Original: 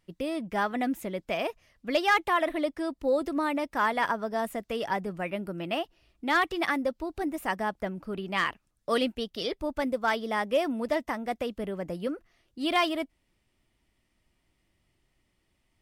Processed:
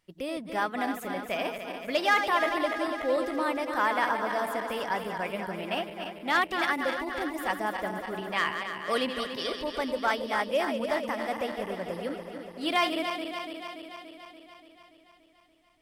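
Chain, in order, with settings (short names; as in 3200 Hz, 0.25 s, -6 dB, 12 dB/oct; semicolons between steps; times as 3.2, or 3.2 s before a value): regenerating reverse delay 0.144 s, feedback 80%, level -7.5 dB; low shelf 340 Hz -7 dB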